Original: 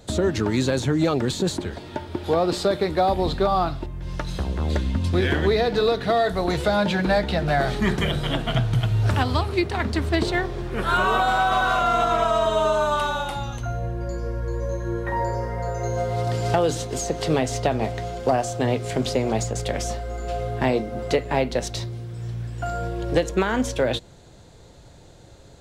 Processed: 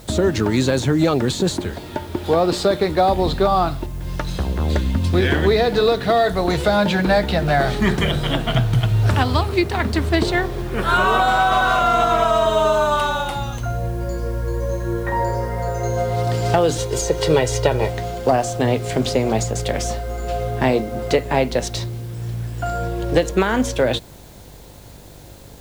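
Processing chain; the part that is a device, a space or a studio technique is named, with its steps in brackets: 16.78–17.90 s: comb 2.1 ms, depth 67%; video cassette with head-switching buzz (mains buzz 50 Hz, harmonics 21, -49 dBFS -5 dB/octave; white noise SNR 31 dB); trim +4 dB

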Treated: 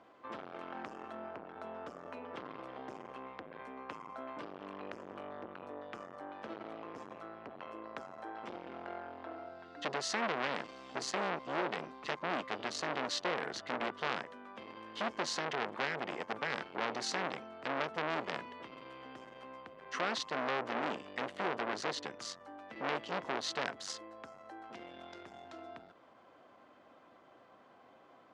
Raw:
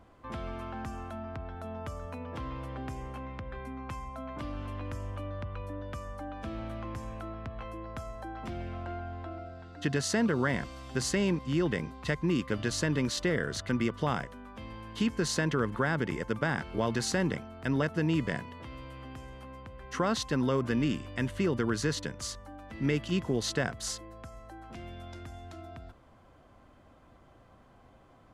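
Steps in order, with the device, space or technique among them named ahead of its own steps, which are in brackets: public-address speaker with an overloaded transformer (transformer saturation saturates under 2.5 kHz; band-pass 320–5000 Hz); trim +1 dB

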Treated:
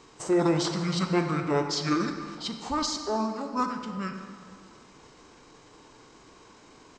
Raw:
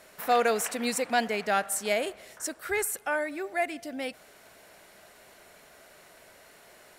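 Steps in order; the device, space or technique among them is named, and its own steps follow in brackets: 2.89–3.53 s: high-pass 270 Hz 24 dB/octave; monster voice (pitch shift -5.5 st; formant shift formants -5 st; bass shelf 130 Hz +5.5 dB; reverberation RT60 2.0 s, pre-delay 22 ms, DRR 5.5 dB)

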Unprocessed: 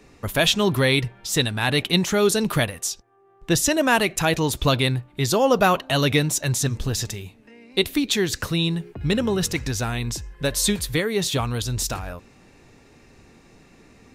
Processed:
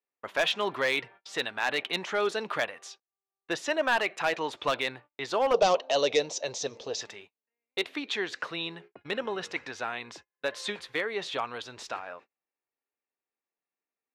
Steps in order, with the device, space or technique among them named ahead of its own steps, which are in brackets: walkie-talkie (band-pass 580–2600 Hz; hard clipper -16.5 dBFS, distortion -14 dB; gate -46 dBFS, range -36 dB); 5.54–7.01 s: FFT filter 330 Hz 0 dB, 480 Hz +10 dB, 1.5 kHz -10 dB, 6.2 kHz +12 dB, 13 kHz -21 dB; trim -2.5 dB

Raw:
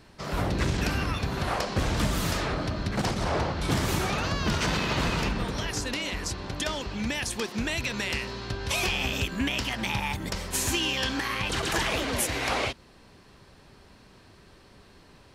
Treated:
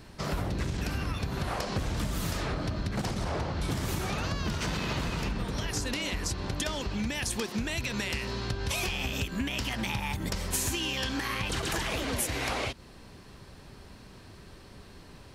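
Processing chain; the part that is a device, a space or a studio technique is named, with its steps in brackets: ASMR close-microphone chain (bass shelf 240 Hz +5 dB; compression, threshold -30 dBFS, peak gain reduction 11.5 dB; treble shelf 7.9 kHz +5.5 dB); trim +1.5 dB

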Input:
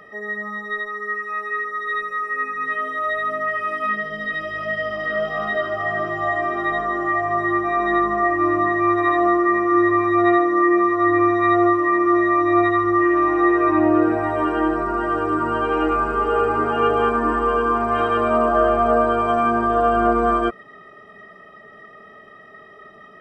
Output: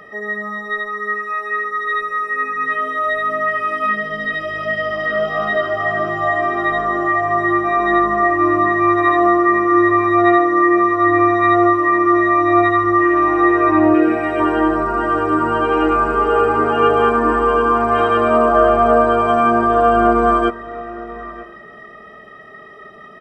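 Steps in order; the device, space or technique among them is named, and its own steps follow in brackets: 13.94–14.40 s: fifteen-band graphic EQ 100 Hz -10 dB, 1 kHz -10 dB, 2.5 kHz +9 dB; echo from a far wall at 160 m, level -17 dB; compressed reverb return (on a send at -11 dB: reverberation RT60 1.8 s, pre-delay 80 ms + compression, threshold -25 dBFS, peak gain reduction 14 dB); on the sum: trim +4.5 dB

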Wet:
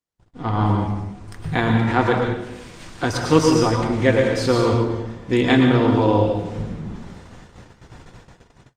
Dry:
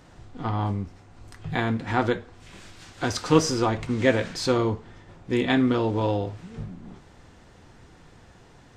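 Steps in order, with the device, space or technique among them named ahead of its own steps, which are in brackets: speakerphone in a meeting room (reverberation RT60 0.95 s, pre-delay 102 ms, DRR 2 dB; level rider gain up to 7 dB; gate -40 dBFS, range -42 dB; Opus 32 kbps 48 kHz)

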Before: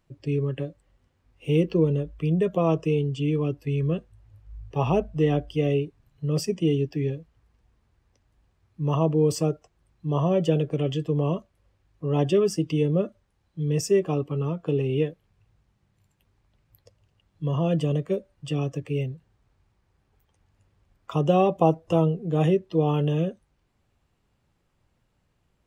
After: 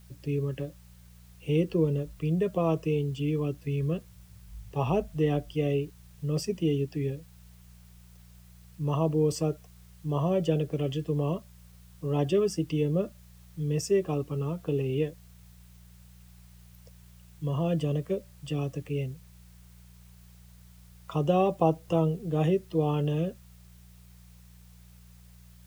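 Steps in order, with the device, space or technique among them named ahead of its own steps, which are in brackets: video cassette with head-switching buzz (mains buzz 60 Hz, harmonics 3, -49 dBFS -4 dB/octave; white noise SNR 32 dB); trim -4 dB

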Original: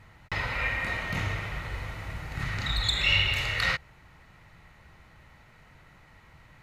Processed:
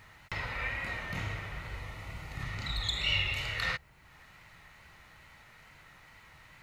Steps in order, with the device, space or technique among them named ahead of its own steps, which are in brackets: 1.80–3.42 s: band-stop 1.6 kHz, Q 6.8; noise-reduction cassette on a plain deck (tape noise reduction on one side only encoder only; wow and flutter; white noise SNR 40 dB); trim -6 dB

